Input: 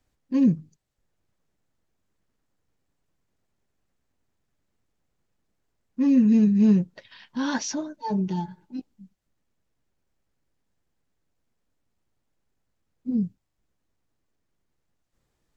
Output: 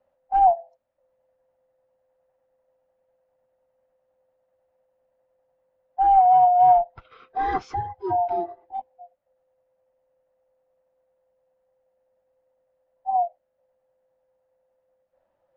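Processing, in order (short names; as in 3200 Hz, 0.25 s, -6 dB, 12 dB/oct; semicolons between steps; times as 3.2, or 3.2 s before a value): band-swap scrambler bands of 500 Hz; LPF 1700 Hz 12 dB/oct; gain +2.5 dB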